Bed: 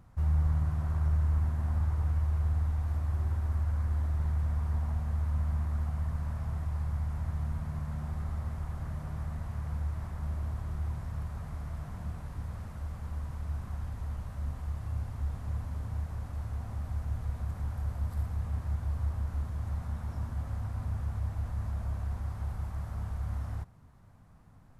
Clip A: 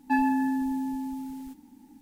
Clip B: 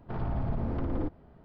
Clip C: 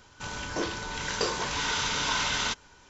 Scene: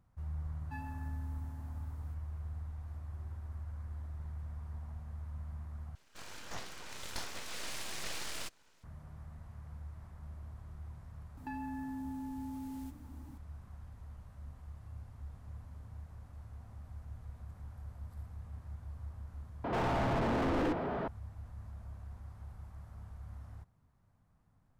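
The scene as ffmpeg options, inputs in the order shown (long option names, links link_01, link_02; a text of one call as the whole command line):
ffmpeg -i bed.wav -i cue0.wav -i cue1.wav -i cue2.wav -filter_complex "[1:a]asplit=2[link_01][link_02];[0:a]volume=-13dB[link_03];[link_01]equalizer=frequency=250:width=0.33:gain=-9[link_04];[3:a]aeval=exprs='abs(val(0))':channel_layout=same[link_05];[link_02]acompressor=threshold=-36dB:ratio=6:attack=3.2:release=140:knee=1:detection=peak[link_06];[2:a]asplit=2[link_07][link_08];[link_08]highpass=frequency=720:poles=1,volume=43dB,asoftclip=type=tanh:threshold=-21dB[link_09];[link_07][link_09]amix=inputs=2:normalize=0,lowpass=frequency=1400:poles=1,volume=-6dB[link_10];[link_03]asplit=3[link_11][link_12][link_13];[link_11]atrim=end=5.954[link_14];[link_05]atrim=end=2.89,asetpts=PTS-STARTPTS,volume=-10dB[link_15];[link_12]atrim=start=8.836:end=19.644[link_16];[link_10]atrim=end=1.44,asetpts=PTS-STARTPTS,volume=-4dB[link_17];[link_13]atrim=start=21.076[link_18];[link_04]atrim=end=2.01,asetpts=PTS-STARTPTS,volume=-17dB,afade=type=in:duration=0.004:curve=hsin,afade=type=out:start_time=2.006:duration=0.004:curve=hsin,adelay=610[link_19];[link_06]atrim=end=2.01,asetpts=PTS-STARTPTS,volume=-3.5dB,afade=type=in:duration=0.004:curve=hsin,afade=type=out:start_time=2.006:duration=0.004:curve=hsin,adelay=11370[link_20];[link_14][link_15]acrossfade=duration=0.004:curve1=hsin:curve2=hsin[link_21];[link_21][link_16]acrossfade=duration=0.004:curve1=hsin:curve2=hsin[link_22];[link_22][link_17]acrossfade=duration=0.004:curve1=hsin:curve2=hsin[link_23];[link_23][link_18]acrossfade=duration=0.004:curve1=hsin:curve2=hsin[link_24];[link_24][link_19][link_20]amix=inputs=3:normalize=0" out.wav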